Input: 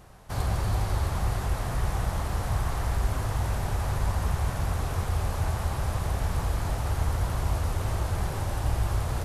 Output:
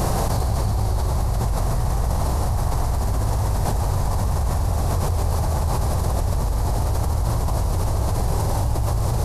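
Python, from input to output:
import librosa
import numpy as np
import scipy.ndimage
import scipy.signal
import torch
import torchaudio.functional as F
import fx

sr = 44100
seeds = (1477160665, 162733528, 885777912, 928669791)

y = fx.band_shelf(x, sr, hz=2100.0, db=-8.5, octaves=1.7)
y = fx.doubler(y, sr, ms=43.0, db=-12)
y = y + 10.0 ** (-5.5 / 20.0) * np.pad(y, (int(137 * sr / 1000.0), 0))[:len(y)]
y = fx.env_flatten(y, sr, amount_pct=100)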